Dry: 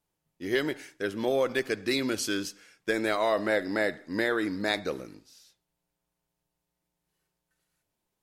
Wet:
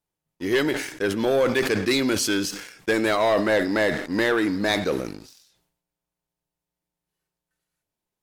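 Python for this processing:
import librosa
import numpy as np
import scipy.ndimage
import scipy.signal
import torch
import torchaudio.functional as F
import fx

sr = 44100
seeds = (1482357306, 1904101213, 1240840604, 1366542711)

y = fx.leveller(x, sr, passes=2)
y = fx.sustainer(y, sr, db_per_s=72.0)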